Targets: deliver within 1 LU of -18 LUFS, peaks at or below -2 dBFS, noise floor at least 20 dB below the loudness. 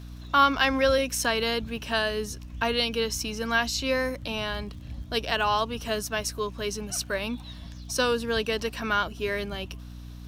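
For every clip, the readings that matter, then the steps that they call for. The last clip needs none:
ticks 40/s; hum 60 Hz; harmonics up to 300 Hz; hum level -39 dBFS; loudness -27.0 LUFS; peak -7.0 dBFS; loudness target -18.0 LUFS
-> de-click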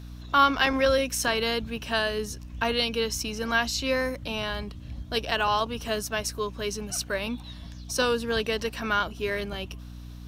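ticks 0.29/s; hum 60 Hz; harmonics up to 300 Hz; hum level -39 dBFS
-> de-hum 60 Hz, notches 5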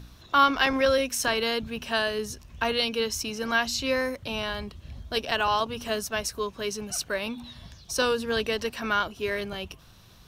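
hum none; loudness -27.0 LUFS; peak -7.5 dBFS; loudness target -18.0 LUFS
-> gain +9 dB; limiter -2 dBFS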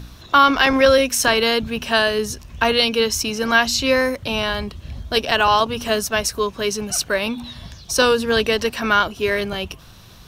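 loudness -18.5 LUFS; peak -2.0 dBFS; noise floor -44 dBFS

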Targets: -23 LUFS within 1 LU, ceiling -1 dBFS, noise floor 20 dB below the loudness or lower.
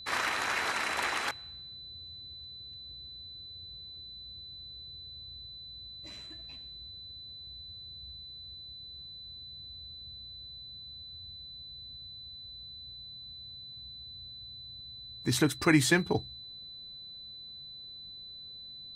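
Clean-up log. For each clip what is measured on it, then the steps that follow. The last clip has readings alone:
steady tone 4000 Hz; tone level -44 dBFS; loudness -36.5 LUFS; peak -12.5 dBFS; loudness target -23.0 LUFS
-> notch 4000 Hz, Q 30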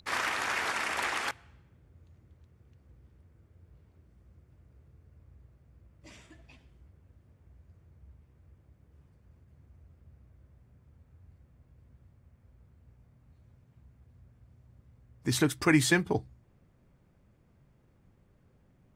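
steady tone none; loudness -29.0 LUFS; peak -12.5 dBFS; loudness target -23.0 LUFS
-> gain +6 dB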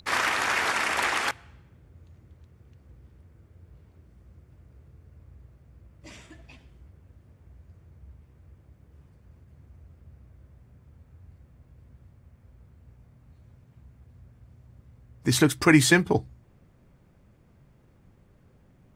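loudness -23.0 LUFS; peak -6.5 dBFS; noise floor -59 dBFS

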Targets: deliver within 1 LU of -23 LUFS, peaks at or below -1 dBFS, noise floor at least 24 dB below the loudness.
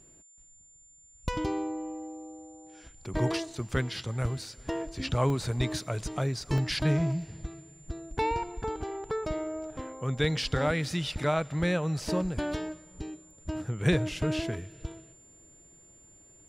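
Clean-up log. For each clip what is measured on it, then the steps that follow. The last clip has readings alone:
dropouts 2; longest dropout 1.1 ms; steady tone 7200 Hz; tone level -55 dBFS; loudness -31.0 LUFS; peak -12.0 dBFS; loudness target -23.0 LUFS
-> interpolate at 5.3/6.58, 1.1 ms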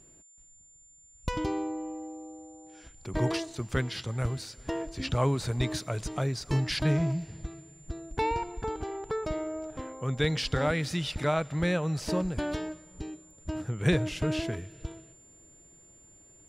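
dropouts 0; steady tone 7200 Hz; tone level -55 dBFS
-> notch 7200 Hz, Q 30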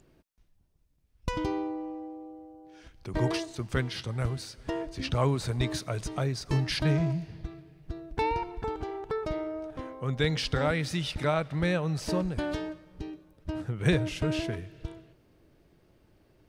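steady tone none; loudness -31.0 LUFS; peak -12.0 dBFS; loudness target -23.0 LUFS
-> gain +8 dB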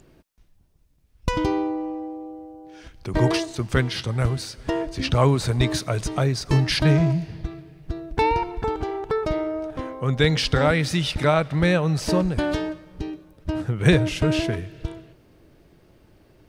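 loudness -23.0 LUFS; peak -4.0 dBFS; noise floor -57 dBFS

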